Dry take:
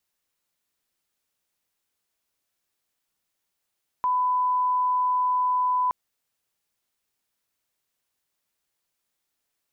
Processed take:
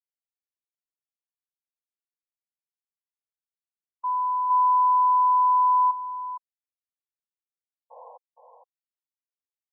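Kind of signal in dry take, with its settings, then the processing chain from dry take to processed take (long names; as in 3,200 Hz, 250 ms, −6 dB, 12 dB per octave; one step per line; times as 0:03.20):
line-up tone −20 dBFS 1.87 s
sound drawn into the spectrogram noise, 0:07.90–0:08.18, 460–1,100 Hz −34 dBFS
on a send: single-tap delay 464 ms −5 dB
on the sum: every bin expanded away from the loudest bin 1.5 to 1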